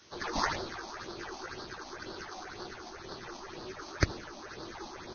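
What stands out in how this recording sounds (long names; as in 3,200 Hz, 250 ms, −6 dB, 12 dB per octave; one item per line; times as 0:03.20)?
aliases and images of a low sample rate 2,900 Hz, jitter 20%
phaser sweep stages 6, 2 Hz, lowest notch 110–2,300 Hz
a quantiser's noise floor 10 bits, dither triangular
Ogg Vorbis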